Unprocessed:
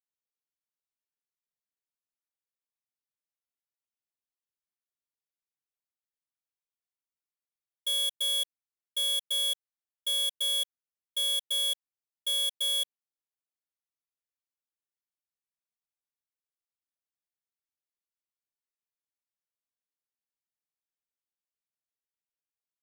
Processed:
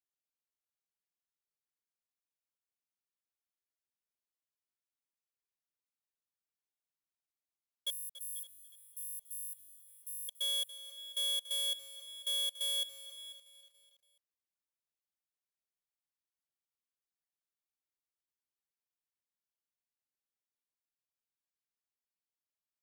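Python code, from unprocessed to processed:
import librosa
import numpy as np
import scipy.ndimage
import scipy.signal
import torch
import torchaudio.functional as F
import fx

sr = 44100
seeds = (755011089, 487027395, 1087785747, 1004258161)

y = fx.cheby2_bandstop(x, sr, low_hz=830.0, high_hz=2800.0, order=4, stop_db=80, at=(7.9, 10.29))
y = y + 10.0 ** (-17.0 / 20.0) * np.pad(y, (int(491 * sr / 1000.0), 0))[:len(y)]
y = fx.echo_crushed(y, sr, ms=284, feedback_pct=55, bits=9, wet_db=-14.5)
y = y * librosa.db_to_amplitude(-5.5)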